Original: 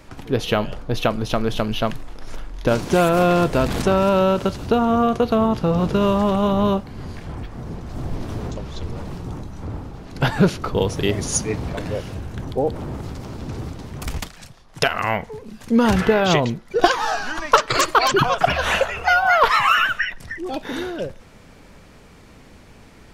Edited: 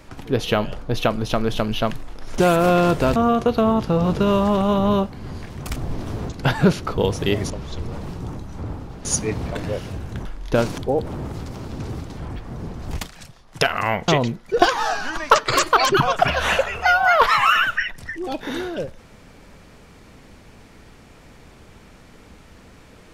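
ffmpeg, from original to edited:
-filter_complex "[0:a]asplit=13[a][b][c][d][e][f][g][h][i][j][k][l][m];[a]atrim=end=2.382[n];[b]atrim=start=2.908:end=3.692[o];[c]atrim=start=4.898:end=7.242[p];[d]atrim=start=13.858:end=14.122[q];[e]atrim=start=7.978:end=8.542[r];[f]atrim=start=10.088:end=11.272[s];[g]atrim=start=8.538:end=10.092[t];[h]atrim=start=11.268:end=12.472[u];[i]atrim=start=2.378:end=2.912[v];[j]atrim=start=12.468:end=13.862[w];[k]atrim=start=7.238:end=7.982[x];[l]atrim=start=14.118:end=15.292[y];[m]atrim=start=16.298[z];[n][o]acrossfade=d=0.004:c1=hsin:c2=hsin[aa];[aa][p]acrossfade=d=0.004:c1=hsin:c2=hsin[ab];[ab][q]acrossfade=d=0.004:c1=hsin:c2=hsin[ac];[ac][r]acrossfade=d=0.004:c1=hsin:c2=hsin[ad];[ad][s]acrossfade=d=0.004:c1=hsin:c2=hsin[ae];[ae][t]acrossfade=d=0.004:c1=hsin:c2=hsin[af];[af][u]acrossfade=d=0.004:c1=hsin:c2=hsin[ag];[ag][v]acrossfade=d=0.004:c1=hsin:c2=hsin[ah];[ah][w]acrossfade=d=0.004:c1=hsin:c2=hsin[ai];[ai][x]acrossfade=d=0.004:c1=hsin:c2=hsin[aj];[aj][y]acrossfade=d=0.004:c1=hsin:c2=hsin[ak];[ak][z]acrossfade=d=0.004:c1=hsin:c2=hsin"

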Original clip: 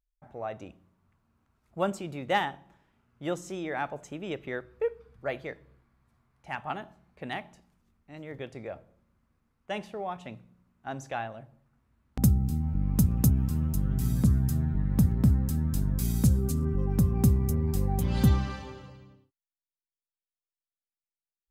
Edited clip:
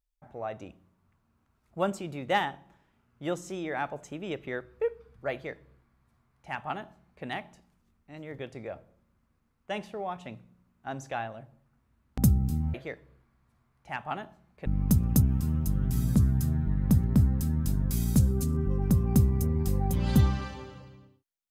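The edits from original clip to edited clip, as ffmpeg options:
-filter_complex "[0:a]asplit=3[a][b][c];[a]atrim=end=12.742[d];[b]atrim=start=5.328:end=7.252[e];[c]atrim=start=12.738[f];[d][e]acrossfade=d=0.004:c1=hsin:c2=hsin[g];[g][f]acrossfade=d=0.004:c1=hsin:c2=hsin"

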